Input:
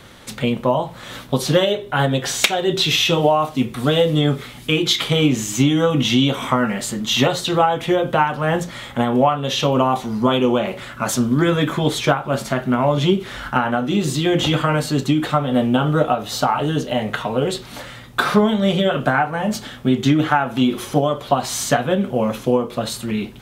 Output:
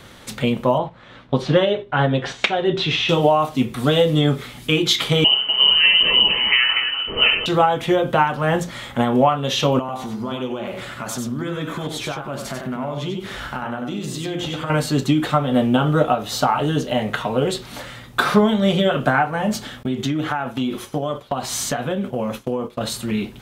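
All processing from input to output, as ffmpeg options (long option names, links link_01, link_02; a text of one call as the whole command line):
ffmpeg -i in.wav -filter_complex "[0:a]asettb=1/sr,asplit=3[link_01][link_02][link_03];[link_01]atrim=end=0.784[link_04];[link_02]atrim=start=0.78:end=3.09,asetpts=PTS-STARTPTS,afade=type=in:duration=0.004:curve=qsin,afade=type=out:start_time=2.306:duration=0.004:curve=qsin,lowpass=3000,agate=range=-8dB:threshold=-32dB:ratio=16:release=100:detection=peak[link_05];[link_03]atrim=start=3.086[link_06];[link_04][link_05]acrossfade=duration=0.004:curve1=hsin:curve2=qsin[link_07];[link_07][link_06]acrossfade=duration=0.004:curve1=qsin:curve2=hsin,asettb=1/sr,asplit=3[link_08][link_09][link_10];[link_08]atrim=end=5.244[link_11];[link_09]atrim=start=5.24:end=7.46,asetpts=PTS-STARTPTS,afade=type=in:duration=0.004:curve=qsin,afade=type=out:start_time=2.216:duration=0.004:curve=qsin,lowpass=frequency=2700:width_type=q:width=0.5098,lowpass=frequency=2700:width_type=q:width=0.6013,lowpass=frequency=2700:width_type=q:width=0.9,lowpass=frequency=2700:width_type=q:width=2.563,afreqshift=-3200,aecho=1:1:70|244:0.531|0.531,atrim=end_sample=97902[link_12];[link_10]atrim=start=7.456[link_13];[link_11][link_12]acrossfade=duration=0.004:curve1=hsin:curve2=qsin[link_14];[link_14][link_13]acrossfade=duration=0.004:curve1=qsin:curve2=hsin,asettb=1/sr,asplit=3[link_15][link_16][link_17];[link_15]atrim=end=9.794[link_18];[link_16]atrim=start=9.79:end=14.7,asetpts=PTS-STARTPTS,afade=type=in:duration=0.004:curve=qsin,afade=type=out:start_time=4.906:duration=0.004:curve=qsin,acompressor=threshold=-27dB:ratio=3:attack=3.2:release=140:knee=1:detection=peak,aecho=1:1:94:0.531,atrim=end_sample=216531[link_19];[link_17]atrim=start=14.696[link_20];[link_18][link_19]acrossfade=duration=0.004:curve1=hsin:curve2=qsin[link_21];[link_21][link_20]acrossfade=duration=0.004:curve1=qsin:curve2=hsin,asettb=1/sr,asplit=3[link_22][link_23][link_24];[link_22]atrim=end=19.834[link_25];[link_23]atrim=start=19.83:end=22.81,asetpts=PTS-STARTPTS,afade=type=in:duration=0.004:curve=qsin,afade=type=out:start_time=2.976:duration=0.004:curve=qsin,agate=range=-33dB:threshold=-26dB:ratio=3:release=100:detection=peak,acompressor=threshold=-20dB:ratio=3:attack=3.2:release=140:knee=1:detection=peak[link_26];[link_24]atrim=start=22.806[link_27];[link_25][link_26]acrossfade=duration=0.004:curve1=hsin:curve2=qsin[link_28];[link_28][link_27]acrossfade=duration=0.004:curve1=qsin:curve2=hsin" out.wav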